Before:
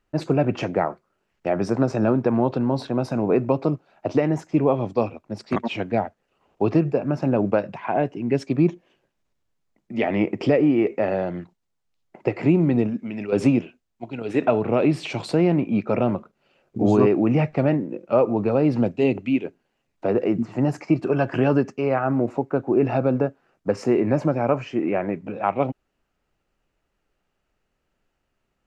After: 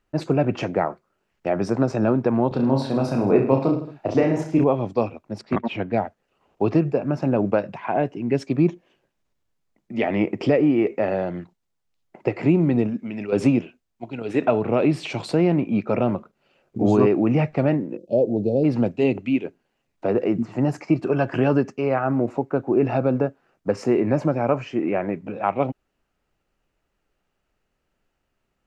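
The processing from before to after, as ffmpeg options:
-filter_complex "[0:a]asettb=1/sr,asplit=3[a][b][c];[a]atrim=end=2.484[d];[b]atrim=start=2.48:end=4.64,asetpts=PTS-STARTPTS,afade=t=in:d=0.004:c=qsin,afade=t=out:st=2.156:d=0.004:c=qsin,aecho=1:1:30|66|109.2|161|223.2:0.631|0.398|0.251|0.158|0.1,atrim=end_sample=95256[e];[c]atrim=start=4.636[f];[d][e]acrossfade=d=0.004:c1=hsin:c2=qsin[g];[g][f]acrossfade=d=0.004:c1=qsin:c2=hsin,asettb=1/sr,asplit=3[h][i][j];[h]atrim=end=5.414[k];[i]atrim=start=5.41:end=5.92,asetpts=PTS-STARTPTS,afade=t=in:d=0.004:c=qsin,afade=t=out:st=0.506:d=0.004:c=qsin,bass=f=250:g=2,treble=f=4k:g=-12[l];[j]atrim=start=5.916[m];[k][l]acrossfade=d=0.004:c1=hsin:c2=qsin[n];[n][m]acrossfade=d=0.004:c1=qsin:c2=hsin,asplit=3[o][p][q];[o]afade=t=out:st=17.96:d=0.02[r];[p]asuperstop=centerf=1500:order=8:qfactor=0.53,afade=t=in:st=17.96:d=0.02,afade=t=out:st=18.63:d=0.02[s];[q]afade=t=in:st=18.63:d=0.02[t];[r][s][t]amix=inputs=3:normalize=0"

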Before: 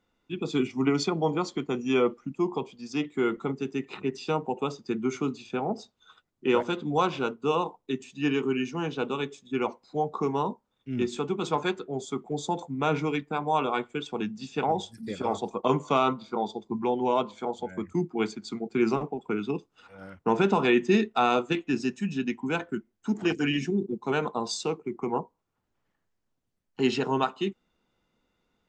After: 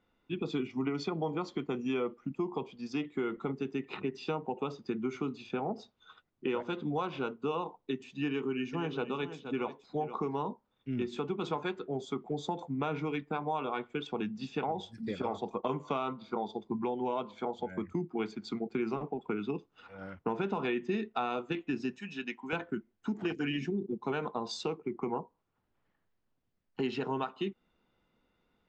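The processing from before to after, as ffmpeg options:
-filter_complex "[0:a]asettb=1/sr,asplit=3[a][b][c];[a]atrim=end=8.264[d];[b]atrim=start=8.26:end=10.48,asetpts=PTS-STARTPTS,afade=t=in:d=0.004:c=qsin,afade=t=out:st=2.216:d=0.004:c=qsin,aecho=1:1:472:0.211,atrim=end_sample=97902[e];[c]atrim=start=10.476[f];[d][e]acrossfade=d=0.004:c1=hsin:c2=qsin[g];[g][f]acrossfade=d=0.004:c1=qsin:c2=hsin,asettb=1/sr,asplit=3[h][i][j];[h]atrim=end=21.984[k];[i]atrim=start=21.98:end=22.53,asetpts=PTS-STARTPTS,afade=t=in:d=0.004:c=qsin,afade=t=out:st=0.546:d=0.004:c=qsin,highpass=f=1k:p=1[l];[j]atrim=start=22.526[m];[k][l]acrossfade=d=0.004:c1=hsin:c2=qsin[n];[n][m]acrossfade=d=0.004:c1=qsin:c2=hsin,lowpass=3.9k,acompressor=threshold=-31dB:ratio=4"

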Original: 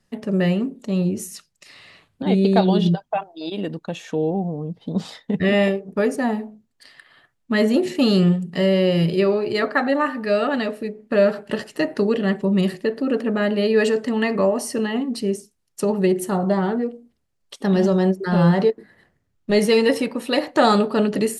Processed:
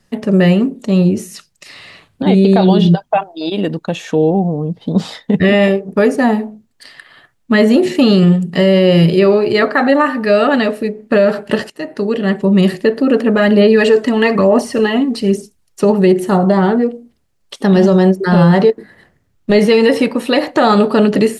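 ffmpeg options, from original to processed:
-filter_complex "[0:a]asplit=3[a][b][c];[a]afade=t=out:st=13.34:d=0.02[d];[b]aphaser=in_gain=1:out_gain=1:delay=3.1:decay=0.44:speed=1.1:type=sinusoidal,afade=t=in:st=13.34:d=0.02,afade=t=out:st=15.81:d=0.02[e];[c]afade=t=in:st=15.81:d=0.02[f];[d][e][f]amix=inputs=3:normalize=0,asplit=2[g][h];[g]atrim=end=11.7,asetpts=PTS-STARTPTS,afade=t=out:st=11.696:d=0.004:c=hsin:silence=0.141254[i];[h]atrim=start=11.7,asetpts=PTS-STARTPTS,afade=t=in:d=1:silence=0.141254[j];[i][j]concat=n=2:v=0:a=1,acrossover=split=4300[k][l];[l]acompressor=threshold=-42dB:ratio=4:attack=1:release=60[m];[k][m]amix=inputs=2:normalize=0,alimiter=level_in=10.5dB:limit=-1dB:release=50:level=0:latency=1,volume=-1dB"

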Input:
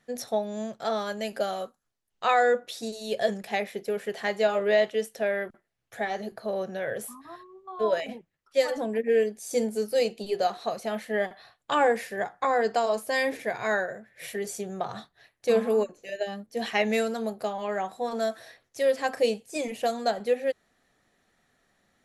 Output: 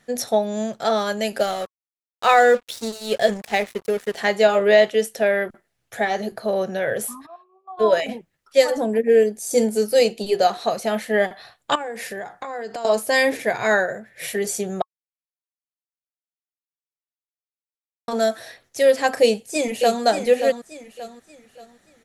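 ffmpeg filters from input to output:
-filter_complex "[0:a]asettb=1/sr,asplit=3[a][b][c];[a]atrim=end=1.384[d];[b]atrim=start=1.38:end=4.18,asetpts=PTS-STARTPTS,afade=t=in:d=0.004:c=qsin,afade=t=out:st=2.796:d=0.004:c=qsin,aeval=exprs='sgn(val(0))*max(abs(val(0))-0.00708,0)':c=same[e];[c]atrim=start=4.176[f];[d][e]acrossfade=d=0.004:c1=hsin:c2=qsin[g];[g][f]acrossfade=d=0.004:c1=qsin:c2=hsin,asplit=3[h][i][j];[h]afade=t=out:st=7.25:d=0.02[k];[i]asplit=3[l][m][n];[l]bandpass=f=730:t=q:w=8,volume=0dB[o];[m]bandpass=f=1.09k:t=q:w=8,volume=-6dB[p];[n]bandpass=f=2.44k:t=q:w=8,volume=-9dB[q];[o][p][q]amix=inputs=3:normalize=0,afade=t=in:st=7.25:d=0.02,afade=t=out:st=7.77:d=0.02[r];[j]afade=t=in:st=7.77:d=0.02[s];[k][r][s]amix=inputs=3:normalize=0,asettb=1/sr,asplit=3[t][u][v];[t]atrim=end=8.644[w];[u]atrim=start=8.64:end=9.58,asetpts=PTS-STARTPTS,afade=t=in:d=0.004:c=qsin,afade=t=out:st=0.936:d=0.004:c=qsin,equalizer=f=2.7k:t=o:w=1.9:g=-5.5[x];[v]atrim=start=9.576[y];[w][x]acrossfade=d=0.004:c1=hsin:c2=qsin[z];[z][y]acrossfade=d=0.004:c1=qsin:c2=hsin,asettb=1/sr,asplit=3[aa][ab][ac];[aa]atrim=end=11.754[ad];[ab]atrim=start=11.75:end=12.85,asetpts=PTS-STARTPTS,afade=t=in:d=0.004:c=qsin,afade=t=out:st=1.096:d=0.004:c=qsin,acompressor=threshold=-35dB:ratio=10:attack=3.2:release=140:knee=1:detection=peak[ae];[ac]atrim=start=12.846[af];[ad][ae]acrossfade=d=0.004:c1=hsin:c2=qsin[ag];[ag][af]acrossfade=d=0.004:c1=qsin:c2=hsin,asplit=2[ah][ai];[ai]afade=t=in:st=19.23:d=0.01,afade=t=out:st=20.03:d=0.01,aecho=0:1:580|1160|1740|2320:0.398107|0.139338|0.0487681|0.0170688[aj];[ah][aj]amix=inputs=2:normalize=0,asplit=3[ak][al][am];[ak]atrim=end=14.82,asetpts=PTS-STARTPTS,afade=t=out:st=14.816:d=0.004:c=hsin[an];[al]atrim=start=14.82:end=18.08,asetpts=PTS-STARTPTS,volume=0[ao];[am]atrim=start=18.08,asetpts=PTS-STARTPTS,afade=t=in:d=0.004:c=hsin[ap];[an][ao][ap]concat=n=3:v=0:a=1,equalizer=f=9k:w=0.63:g=3,bandreject=f=1.1k:w=24,volume=8dB"

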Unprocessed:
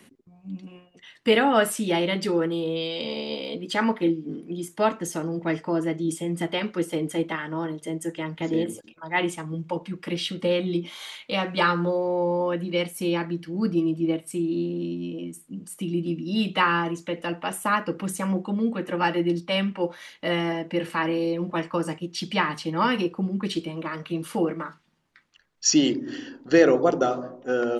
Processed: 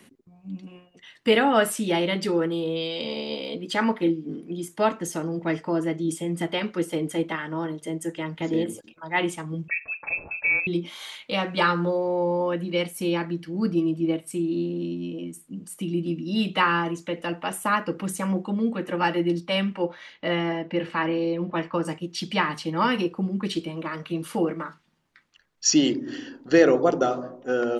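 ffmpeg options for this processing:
-filter_complex "[0:a]asettb=1/sr,asplit=3[a][b][c];[a]atrim=end=9.684[d];[b]atrim=start=9.68:end=10.67,asetpts=PTS-STARTPTS,afade=t=in:d=0.004:c=qsin,afade=t=out:st=0.986:d=0.004:c=qsin,lowpass=f=2.4k:t=q:w=0.5098,lowpass=f=2.4k:t=q:w=0.6013,lowpass=f=2.4k:t=q:w=0.9,lowpass=f=2.4k:t=q:w=2.563,afreqshift=-2800[e];[c]atrim=start=10.666[f];[d][e]acrossfade=d=0.004:c1=hsin:c2=qsin[g];[g][f]acrossfade=d=0.004:c1=qsin:c2=hsin,asettb=1/sr,asplit=3[h][i][j];[h]atrim=end=19.824[k];[i]atrim=start=19.82:end=21.85,asetpts=PTS-STARTPTS,afade=t=in:d=0.004:c=qsin,afade=t=out:st=2.026:d=0.004:c=qsin,lowpass=4.1k[l];[j]atrim=start=21.846[m];[k][l]acrossfade=d=0.004:c1=hsin:c2=qsin[n];[n][m]acrossfade=d=0.004:c1=qsin:c2=hsin"

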